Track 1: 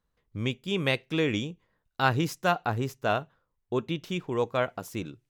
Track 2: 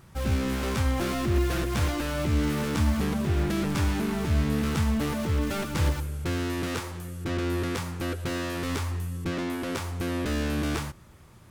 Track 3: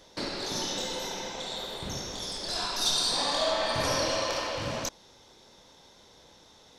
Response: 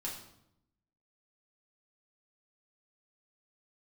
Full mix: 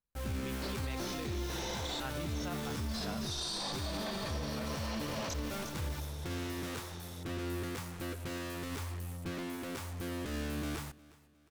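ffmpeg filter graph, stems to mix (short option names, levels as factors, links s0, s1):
-filter_complex "[0:a]volume=0.158,asplit=2[s0][s1];[1:a]highshelf=f=11000:g=6,acrusher=bits=5:mix=0:aa=0.5,volume=0.335,asplit=2[s2][s3];[s3]volume=0.075[s4];[2:a]adelay=450,volume=1.41,asplit=2[s5][s6];[s6]volume=0.112[s7];[s1]apad=whole_len=318844[s8];[s5][s8]sidechaincompress=threshold=0.001:ratio=8:attack=16:release=181[s9];[s4][s7]amix=inputs=2:normalize=0,aecho=0:1:358|716|1074|1432|1790|2148:1|0.4|0.16|0.064|0.0256|0.0102[s10];[s0][s2][s9][s10]amix=inputs=4:normalize=0,alimiter=level_in=1.78:limit=0.0631:level=0:latency=1:release=22,volume=0.562"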